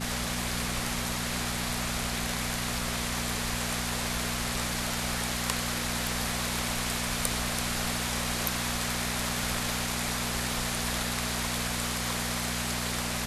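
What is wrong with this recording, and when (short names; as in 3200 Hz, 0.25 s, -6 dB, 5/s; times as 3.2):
hum 60 Hz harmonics 4 -36 dBFS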